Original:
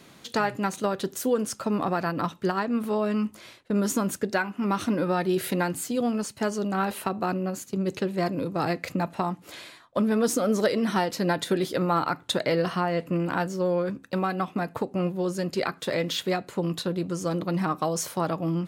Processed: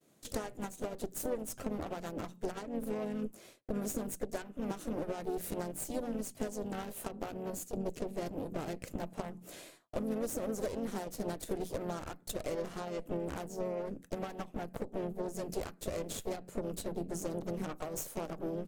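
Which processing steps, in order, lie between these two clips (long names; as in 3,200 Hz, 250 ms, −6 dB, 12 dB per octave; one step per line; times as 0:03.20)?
mains-hum notches 60/120/180/240 Hz
downward expander −44 dBFS
low-shelf EQ 140 Hz −8 dB
harmonic generator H 3 −35 dB, 7 −27 dB, 8 −16 dB, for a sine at −11 dBFS
downward compressor 5 to 1, threshold −35 dBFS, peak gain reduction 15 dB
pitch-shifted copies added −5 semitones −16 dB, +3 semitones −8 dB
flat-topped bell 2,100 Hz −10 dB 2.9 octaves
level +1.5 dB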